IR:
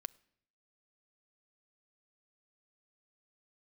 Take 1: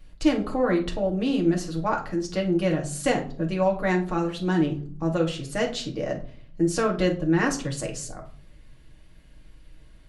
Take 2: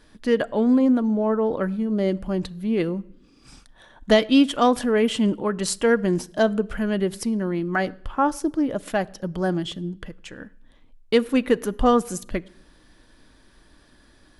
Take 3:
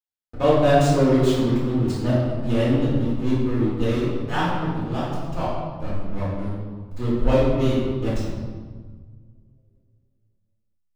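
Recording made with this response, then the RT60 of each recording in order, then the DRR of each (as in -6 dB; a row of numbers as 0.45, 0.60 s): 2; 0.50, 0.65, 1.5 s; 0.0, 13.0, -9.5 dB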